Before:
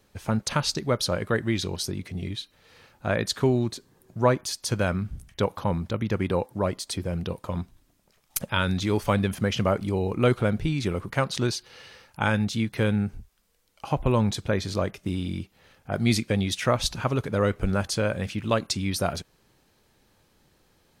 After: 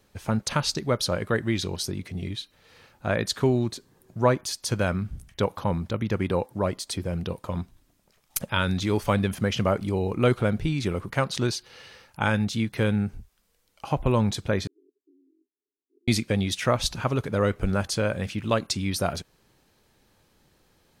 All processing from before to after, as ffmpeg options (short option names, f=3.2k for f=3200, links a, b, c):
-filter_complex "[0:a]asettb=1/sr,asplit=3[a][b][c];[a]atrim=end=14.674[d];[b]atrim=start=14.67:end=16.08,asetpts=PTS-STARTPTS,afade=t=in:d=0.004:c=qsin,afade=t=out:st=1.406:d=0.004:c=qsin,asuperpass=centerf=330:order=20:qfactor=1.9,aderivative[e];[c]atrim=start=16.076[f];[d][e]acrossfade=d=0.004:c1=hsin:c2=qsin[g];[g][f]acrossfade=d=0.004:c1=qsin:c2=hsin"